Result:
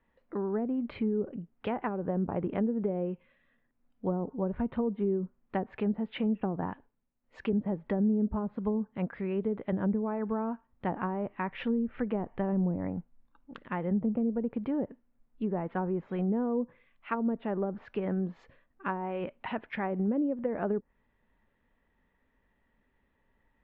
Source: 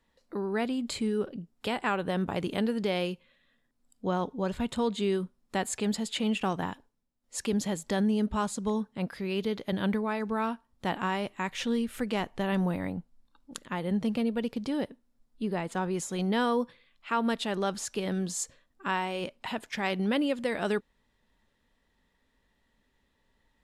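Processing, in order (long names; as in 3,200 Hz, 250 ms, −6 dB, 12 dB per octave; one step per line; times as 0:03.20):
low-pass filter 2,500 Hz 24 dB per octave
treble cut that deepens with the level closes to 470 Hz, closed at −24.5 dBFS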